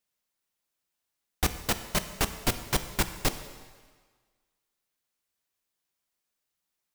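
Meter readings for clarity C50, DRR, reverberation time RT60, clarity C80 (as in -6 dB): 11.0 dB, 9.0 dB, 1.5 s, 12.5 dB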